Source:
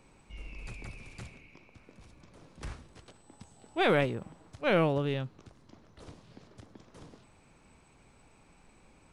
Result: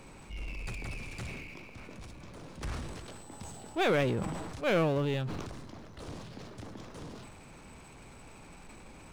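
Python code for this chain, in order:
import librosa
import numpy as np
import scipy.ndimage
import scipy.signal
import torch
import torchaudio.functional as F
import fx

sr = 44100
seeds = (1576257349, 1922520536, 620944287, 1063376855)

y = fx.power_curve(x, sr, exponent=0.7)
y = fx.sustainer(y, sr, db_per_s=30.0)
y = F.gain(torch.from_numpy(y), -4.0).numpy()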